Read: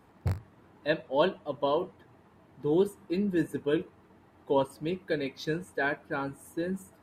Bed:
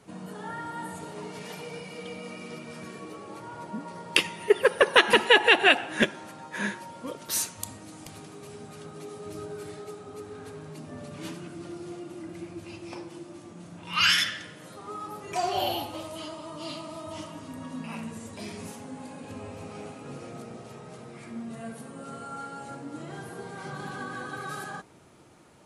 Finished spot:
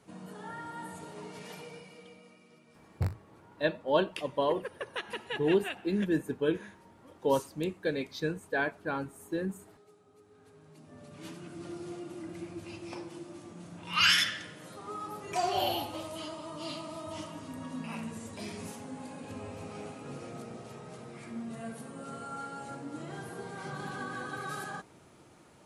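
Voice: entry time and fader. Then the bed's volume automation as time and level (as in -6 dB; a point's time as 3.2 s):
2.75 s, -1.0 dB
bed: 1.58 s -5.5 dB
2.45 s -19.5 dB
10.22 s -19.5 dB
11.69 s -2 dB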